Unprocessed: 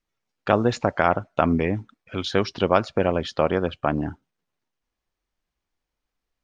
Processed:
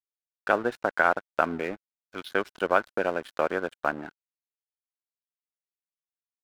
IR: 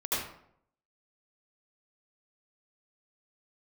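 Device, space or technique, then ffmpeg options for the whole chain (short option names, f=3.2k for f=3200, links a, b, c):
pocket radio on a weak battery: -af "highpass=330,lowpass=3.3k,aeval=exprs='sgn(val(0))*max(abs(val(0))-0.015,0)':c=same,equalizer=f=1.5k:t=o:w=0.23:g=10,volume=-3.5dB"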